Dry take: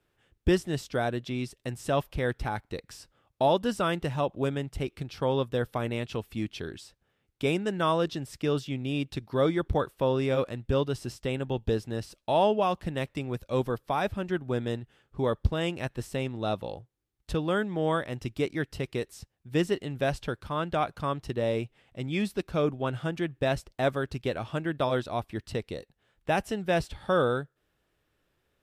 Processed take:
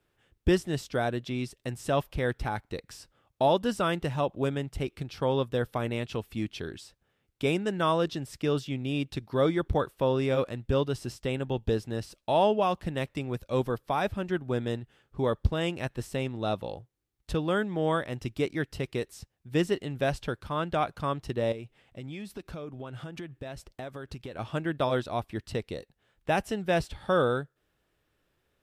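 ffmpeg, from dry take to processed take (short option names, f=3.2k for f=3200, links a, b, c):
-filter_complex "[0:a]asettb=1/sr,asplit=3[a][b][c];[a]atrim=end=21.524[d];[b]atrim=start=21.52:end=24.39,asetpts=PTS-STARTPTS,afade=t=in:d=0.004:c=qsin,afade=t=out:st=2.866:d=0.004:c=qsin,acompressor=threshold=-35dB:ratio=10:attack=3.2:release=140:knee=1:detection=peak[e];[c]atrim=start=24.386[f];[d][e]acrossfade=d=0.004:c1=hsin:c2=qsin[g];[g][f]acrossfade=d=0.004:c1=qsin:c2=hsin"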